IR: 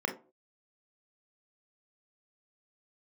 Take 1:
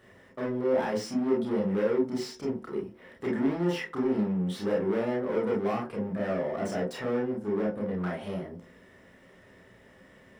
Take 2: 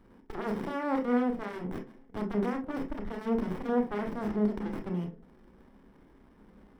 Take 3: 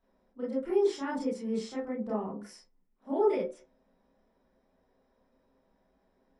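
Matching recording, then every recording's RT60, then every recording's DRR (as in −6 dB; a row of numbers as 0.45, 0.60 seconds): 2; non-exponential decay, non-exponential decay, non-exponential decay; −4.0, 3.5, −9.0 decibels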